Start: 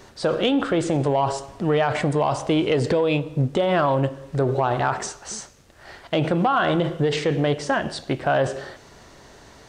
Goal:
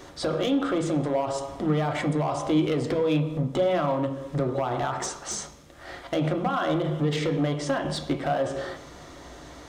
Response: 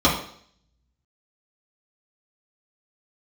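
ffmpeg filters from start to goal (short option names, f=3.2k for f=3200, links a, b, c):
-filter_complex "[0:a]acompressor=threshold=-25dB:ratio=10,asoftclip=type=hard:threshold=-24dB,asplit=2[a][b];[1:a]atrim=start_sample=2205[c];[b][c]afir=irnorm=-1:irlink=0,volume=-23dB[d];[a][d]amix=inputs=2:normalize=0"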